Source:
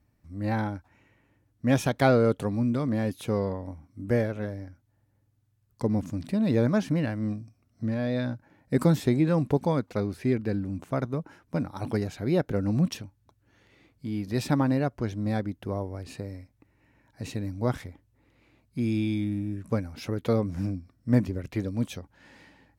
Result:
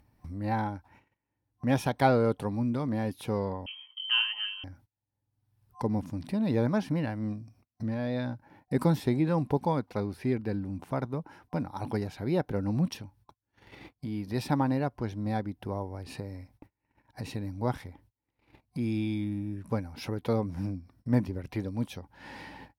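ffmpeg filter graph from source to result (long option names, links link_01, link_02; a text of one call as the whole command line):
ffmpeg -i in.wav -filter_complex "[0:a]asettb=1/sr,asplit=3[link_01][link_02][link_03];[link_01]atrim=end=3.664[link_04];[link_02]atrim=start=3.66:end=4.64,asetpts=PTS-STARTPTS,afade=type=in:duration=0.004:curve=qsin,afade=type=out:start_time=0.976:duration=0.004:curve=qsin,aecho=1:1:4.9:0.67,atrim=end_sample=43218,lowpass=frequency=2800:width_type=q:width=0.5098,lowpass=frequency=2800:width_type=q:width=0.6013,lowpass=frequency=2800:width_type=q:width=0.9,lowpass=frequency=2800:width_type=q:width=2.563,afreqshift=-3300[link_05];[link_03]atrim=start=4.636[link_06];[link_04][link_05]acrossfade=duration=0.004:curve1=hsin:curve2=qsin[link_07];[link_07][link_06]acrossfade=duration=0.004:curve1=qsin:curve2=hsin,agate=range=-37dB:threshold=-58dB:ratio=16:detection=peak,superequalizer=9b=2:15b=0.501,acompressor=mode=upward:threshold=-29dB:ratio=2.5,volume=-3.5dB" out.wav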